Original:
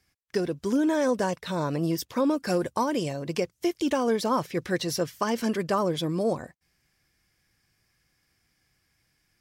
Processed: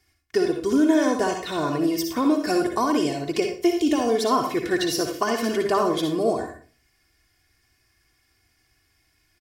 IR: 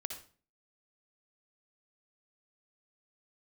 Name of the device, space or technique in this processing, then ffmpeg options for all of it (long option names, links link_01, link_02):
microphone above a desk: -filter_complex "[0:a]asettb=1/sr,asplit=3[link_01][link_02][link_03];[link_01]atrim=end=3.684[link_04];[link_02]atrim=start=3.68:end=4.16,asetpts=PTS-STARTPTS,afade=type=in:duration=0.004:curve=qsin,afade=type=out:start_time=0.476:duration=0.004:curve=qsin,equalizer=frequency=1300:width_type=o:width=0.84:gain=-8.5[link_05];[link_03]atrim=start=4.156[link_06];[link_04][link_05]acrossfade=duration=0.004:curve1=hsin:curve2=qsin[link_07];[link_07][link_06]acrossfade=duration=0.004:curve1=qsin:curve2=hsin,aecho=1:1:2.8:0.67[link_08];[1:a]atrim=start_sample=2205[link_09];[link_08][link_09]afir=irnorm=-1:irlink=0,volume=4.5dB"